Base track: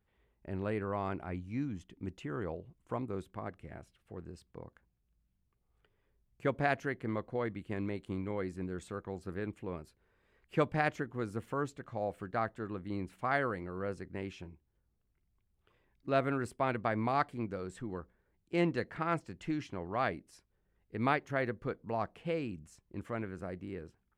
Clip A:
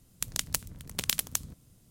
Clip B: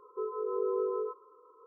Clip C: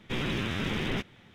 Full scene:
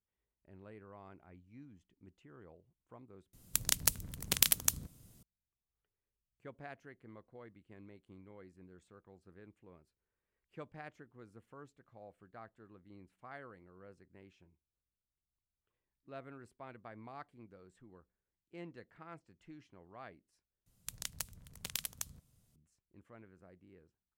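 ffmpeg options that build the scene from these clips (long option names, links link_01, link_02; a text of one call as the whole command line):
ffmpeg -i bed.wav -i cue0.wav -filter_complex "[1:a]asplit=2[link_01][link_02];[0:a]volume=-18.5dB[link_03];[link_01]highshelf=frequency=12000:gain=6.5[link_04];[link_02]equalizer=frequency=310:width_type=o:width=0.83:gain=-7[link_05];[link_03]asplit=3[link_06][link_07][link_08];[link_06]atrim=end=3.334[link_09];[link_04]atrim=end=1.9,asetpts=PTS-STARTPTS,volume=-1dB[link_10];[link_07]atrim=start=5.226:end=20.664[link_11];[link_05]atrim=end=1.9,asetpts=PTS-STARTPTS,volume=-10.5dB[link_12];[link_08]atrim=start=22.556[link_13];[link_09][link_10]acrossfade=duration=0.004:curve1=hsin:curve2=hsin[link_14];[link_14][link_11]acrossfade=duration=0.004:curve1=hsin:curve2=hsin[link_15];[link_15][link_12]acrossfade=duration=0.004:curve1=hsin:curve2=hsin[link_16];[link_16][link_13]acrossfade=duration=0.004:curve1=hsin:curve2=hsin" out.wav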